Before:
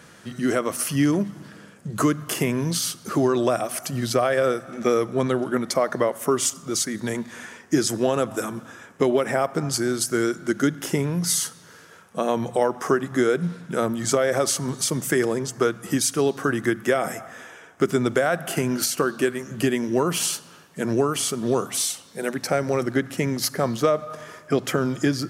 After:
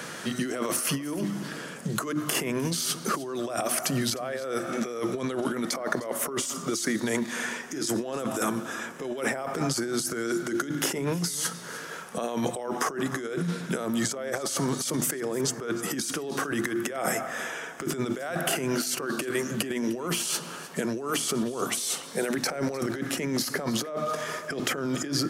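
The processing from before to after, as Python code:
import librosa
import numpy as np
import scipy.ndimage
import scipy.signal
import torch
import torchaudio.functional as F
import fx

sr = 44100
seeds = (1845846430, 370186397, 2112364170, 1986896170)

y = scipy.signal.sosfilt(scipy.signal.butter(2, 170.0, 'highpass', fs=sr, output='sos'), x)
y = fx.hum_notches(y, sr, base_hz=50, count=7)
y = fx.over_compress(y, sr, threshold_db=-30.0, ratio=-1.0)
y = y + 10.0 ** (-20.5 / 20.0) * np.pad(y, (int(304 * sr / 1000.0), 0))[:len(y)]
y = fx.band_squash(y, sr, depth_pct=40)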